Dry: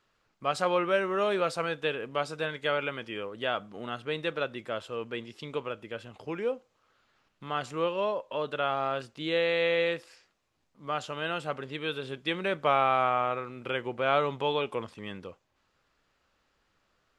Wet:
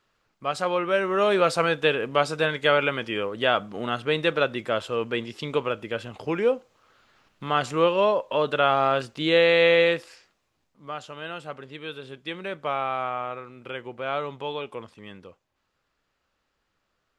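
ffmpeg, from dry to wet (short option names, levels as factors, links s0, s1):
-af "volume=2.66,afade=t=in:st=0.82:d=0.76:silence=0.446684,afade=t=out:st=9.7:d=1.26:silence=0.266073"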